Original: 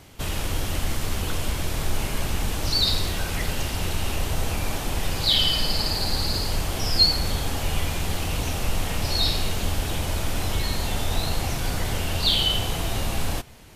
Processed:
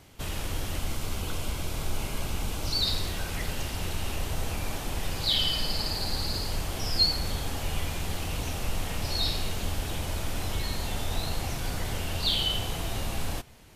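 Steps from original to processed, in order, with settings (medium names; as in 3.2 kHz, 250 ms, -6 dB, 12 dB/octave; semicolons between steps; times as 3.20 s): 0.79–2.81 s: band-stop 1.8 kHz, Q 7.7; trim -5.5 dB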